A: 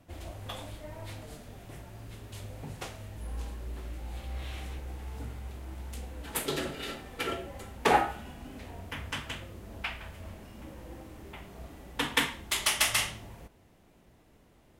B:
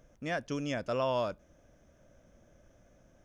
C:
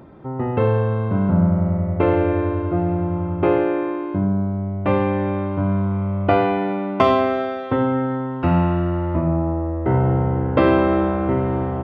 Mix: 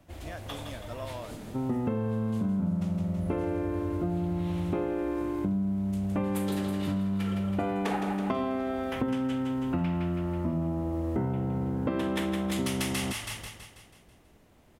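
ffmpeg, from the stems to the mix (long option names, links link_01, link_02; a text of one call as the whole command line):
ffmpeg -i stem1.wav -i stem2.wav -i stem3.wav -filter_complex "[0:a]volume=0.5dB,asplit=2[link_01][link_02];[link_02]volume=-7dB[link_03];[1:a]volume=-9.5dB[link_04];[2:a]equalizer=frequency=220:width_type=o:width=0.64:gain=13.5,adelay=1300,volume=-6dB[link_05];[link_03]aecho=0:1:163|326|489|652|815|978|1141|1304:1|0.52|0.27|0.141|0.0731|0.038|0.0198|0.0103[link_06];[link_01][link_04][link_05][link_06]amix=inputs=4:normalize=0,acompressor=threshold=-27dB:ratio=6" out.wav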